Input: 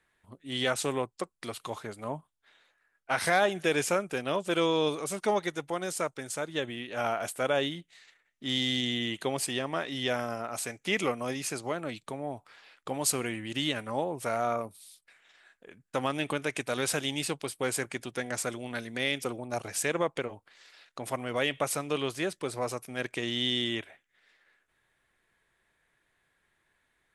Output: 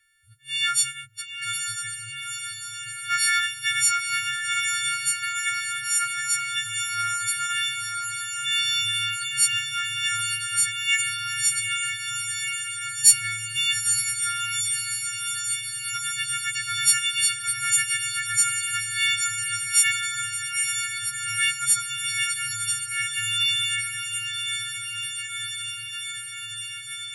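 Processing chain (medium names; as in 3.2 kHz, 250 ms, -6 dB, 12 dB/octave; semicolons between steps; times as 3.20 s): partials quantised in pitch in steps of 4 st; echo that smears into a reverb 905 ms, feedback 79%, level -6 dB; in parallel at -7.5 dB: one-sided clip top -13.5 dBFS; on the sum: FFT band-reject 130–1300 Hz; trim -2 dB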